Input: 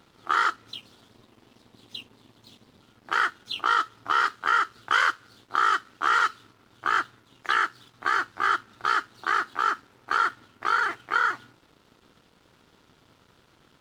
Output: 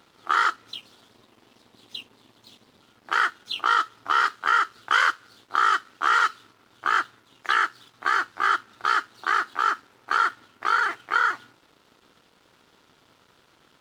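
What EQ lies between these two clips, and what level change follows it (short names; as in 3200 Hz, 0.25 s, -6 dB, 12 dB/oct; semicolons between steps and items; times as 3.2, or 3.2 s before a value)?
low shelf 240 Hz -9 dB; +2.0 dB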